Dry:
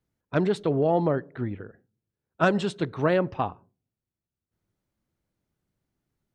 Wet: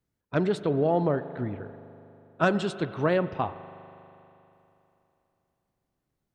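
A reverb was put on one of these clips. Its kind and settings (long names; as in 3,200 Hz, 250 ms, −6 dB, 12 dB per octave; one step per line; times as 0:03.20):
spring reverb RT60 3.1 s, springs 40 ms, chirp 75 ms, DRR 13 dB
level −1.5 dB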